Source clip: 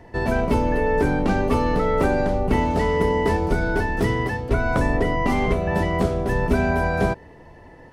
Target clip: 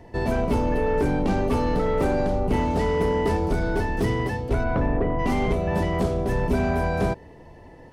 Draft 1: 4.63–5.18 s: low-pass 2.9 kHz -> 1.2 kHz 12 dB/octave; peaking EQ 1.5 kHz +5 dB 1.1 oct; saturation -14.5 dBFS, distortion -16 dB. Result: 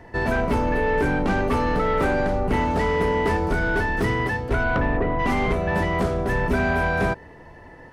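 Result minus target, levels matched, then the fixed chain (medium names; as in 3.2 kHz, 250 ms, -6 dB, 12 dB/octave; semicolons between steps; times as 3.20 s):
2 kHz band +7.0 dB
4.63–5.18 s: low-pass 2.9 kHz -> 1.2 kHz 12 dB/octave; peaking EQ 1.5 kHz -5.5 dB 1.1 oct; saturation -14.5 dBFS, distortion -17 dB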